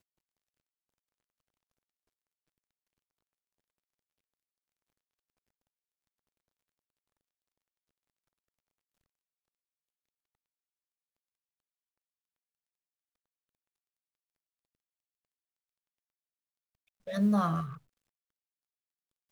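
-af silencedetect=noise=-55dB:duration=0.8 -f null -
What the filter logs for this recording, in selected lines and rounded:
silence_start: 0.00
silence_end: 17.07 | silence_duration: 17.07
silence_start: 17.78
silence_end: 19.31 | silence_duration: 1.53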